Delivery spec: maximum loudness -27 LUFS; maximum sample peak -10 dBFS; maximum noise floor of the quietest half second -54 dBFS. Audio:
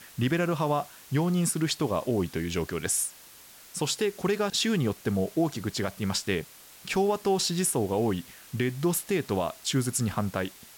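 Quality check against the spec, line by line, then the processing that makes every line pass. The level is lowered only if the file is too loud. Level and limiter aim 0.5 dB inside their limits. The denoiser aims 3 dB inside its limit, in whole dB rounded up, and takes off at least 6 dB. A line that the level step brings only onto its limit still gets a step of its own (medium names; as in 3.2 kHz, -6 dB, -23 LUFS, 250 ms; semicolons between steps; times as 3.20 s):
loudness -28.0 LUFS: pass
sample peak -15.5 dBFS: pass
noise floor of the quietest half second -51 dBFS: fail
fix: noise reduction 6 dB, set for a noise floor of -51 dBFS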